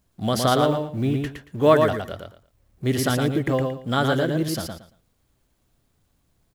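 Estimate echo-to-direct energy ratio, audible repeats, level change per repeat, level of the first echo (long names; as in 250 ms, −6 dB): −4.5 dB, 3, −13.5 dB, −4.5 dB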